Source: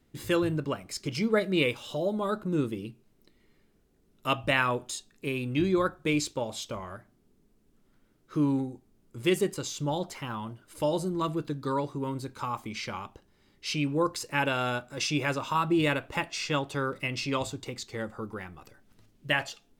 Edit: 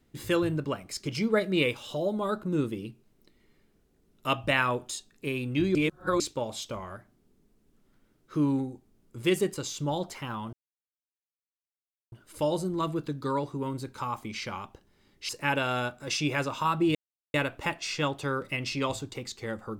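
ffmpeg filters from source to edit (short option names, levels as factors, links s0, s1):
-filter_complex "[0:a]asplit=6[s0][s1][s2][s3][s4][s5];[s0]atrim=end=5.752[s6];[s1]atrim=start=5.748:end=6.202,asetpts=PTS-STARTPTS,areverse[s7];[s2]atrim=start=6.198:end=10.53,asetpts=PTS-STARTPTS,afade=t=out:st=4.328:d=0.004:c=hsin,apad=pad_dur=1.59[s8];[s3]atrim=start=10.53:end=13.702,asetpts=PTS-STARTPTS,afade=t=in:d=0.004:c=hsin[s9];[s4]atrim=start=14.188:end=15.85,asetpts=PTS-STARTPTS,afade=t=out:st=1.658:d=0.004:c=hsin,apad=pad_dur=0.39[s10];[s5]atrim=start=15.85,asetpts=PTS-STARTPTS,afade=t=in:d=0.004:c=hsin[s11];[s6][s7]acrossfade=d=0.004:c1=hsin:c2=hsin[s12];[s8][s9]concat=n=2:v=0:a=1[s13];[s12][s13]acrossfade=d=0.004:c1=hsin:c2=hsin[s14];[s10][s11]concat=n=2:v=0:a=1[s15];[s14][s15]acrossfade=d=0.004:c1=hsin:c2=hsin"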